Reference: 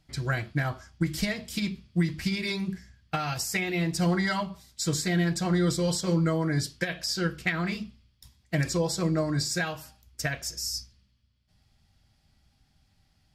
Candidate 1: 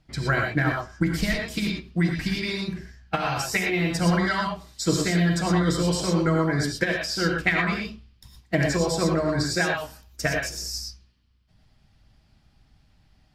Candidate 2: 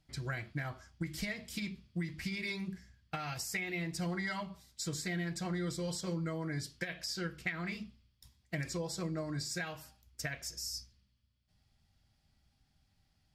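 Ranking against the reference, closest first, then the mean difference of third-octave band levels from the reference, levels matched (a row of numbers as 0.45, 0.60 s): 2, 1; 1.5, 5.5 dB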